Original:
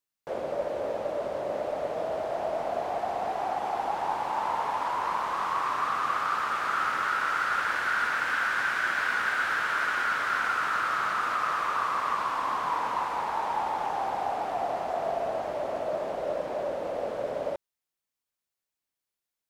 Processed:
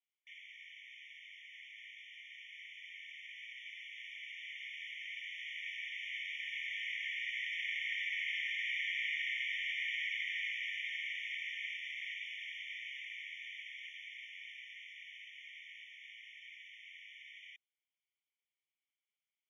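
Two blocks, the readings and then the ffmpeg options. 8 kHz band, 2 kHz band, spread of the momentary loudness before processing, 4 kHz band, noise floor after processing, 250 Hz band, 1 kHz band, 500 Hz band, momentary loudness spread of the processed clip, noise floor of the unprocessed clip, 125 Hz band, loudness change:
under -15 dB, -9.0 dB, 6 LU, -1.0 dB, under -85 dBFS, under -40 dB, under -40 dB, under -40 dB, 16 LU, under -85 dBFS, under -40 dB, -11.0 dB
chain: -filter_complex "[0:a]asplit=3[a][b][c];[a]bandpass=f=270:t=q:w=8,volume=0dB[d];[b]bandpass=f=2.29k:t=q:w=8,volume=-6dB[e];[c]bandpass=f=3.01k:t=q:w=8,volume=-9dB[f];[d][e][f]amix=inputs=3:normalize=0,afftfilt=real='re*eq(mod(floor(b*sr/1024/1800),2),1)':imag='im*eq(mod(floor(b*sr/1024/1800),2),1)':win_size=1024:overlap=0.75,volume=11dB"

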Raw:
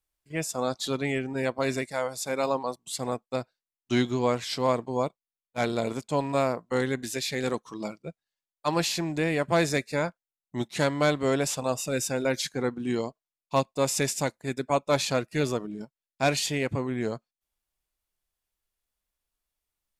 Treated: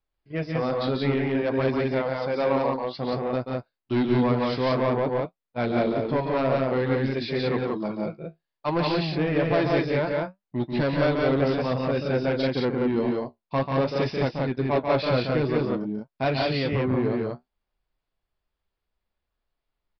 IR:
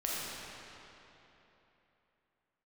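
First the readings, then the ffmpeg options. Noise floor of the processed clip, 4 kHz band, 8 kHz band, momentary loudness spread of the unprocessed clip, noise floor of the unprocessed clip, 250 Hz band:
-85 dBFS, -1.5 dB, under -25 dB, 9 LU, under -85 dBFS, +5.0 dB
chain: -af "highshelf=f=2k:g=-10.5,flanger=delay=7.2:depth=9.1:regen=-49:speed=0.56:shape=sinusoidal,aresample=11025,asoftclip=type=tanh:threshold=-27.5dB,aresample=44100,aecho=1:1:139.9|177.8:0.501|0.794,volume=9dB"

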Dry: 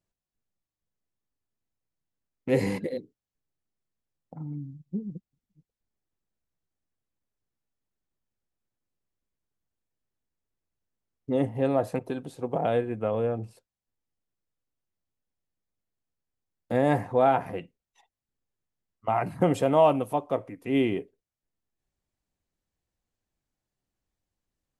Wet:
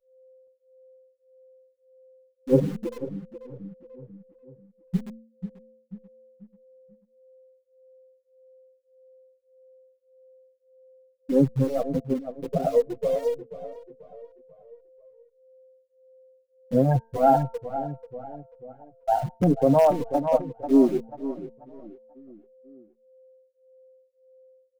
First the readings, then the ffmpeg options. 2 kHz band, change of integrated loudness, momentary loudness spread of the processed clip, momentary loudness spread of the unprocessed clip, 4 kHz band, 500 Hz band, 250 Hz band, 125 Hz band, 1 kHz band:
-8.5 dB, +2.5 dB, 21 LU, 16 LU, n/a, +2.5 dB, +5.0 dB, +5.0 dB, +2.0 dB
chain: -filter_complex "[0:a]afftfilt=real='re*gte(hypot(re,im),0.251)':imag='im*gte(hypot(re,im),0.251)':win_size=1024:overlap=0.75,equalizer=f=160:w=1.3:g=7.5,bandreject=f=227.1:t=h:w=4,bandreject=f=454.2:t=h:w=4,bandreject=f=681.3:t=h:w=4,bandreject=f=908.4:t=h:w=4,bandreject=f=1.1355k:t=h:w=4,bandreject=f=1.3626k:t=h:w=4,bandreject=f=1.5897k:t=h:w=4,bandreject=f=1.8168k:t=h:w=4,bandreject=f=2.0439k:t=h:w=4,bandreject=f=2.271k:t=h:w=4,bandreject=f=2.4981k:t=h:w=4,aeval=exprs='val(0)+0.00141*sin(2*PI*520*n/s)':c=same,asplit=2[a][b];[b]acrusher=bits=3:dc=4:mix=0:aa=0.000001,volume=-11dB[c];[a][c]amix=inputs=2:normalize=0,asoftclip=type=hard:threshold=-7dB,asplit=2[d][e];[e]adelay=488,lowpass=f=2.2k:p=1,volume=-12dB,asplit=2[f][g];[g]adelay=488,lowpass=f=2.2k:p=1,volume=0.44,asplit=2[h][i];[i]adelay=488,lowpass=f=2.2k:p=1,volume=0.44,asplit=2[j][k];[k]adelay=488,lowpass=f=2.2k:p=1,volume=0.44[l];[d][f][h][j][l]amix=inputs=5:normalize=0,alimiter=level_in=12.5dB:limit=-1dB:release=50:level=0:latency=1,asplit=2[m][n];[n]adelay=6.4,afreqshift=-1.7[o];[m][o]amix=inputs=2:normalize=1,volume=-6.5dB"

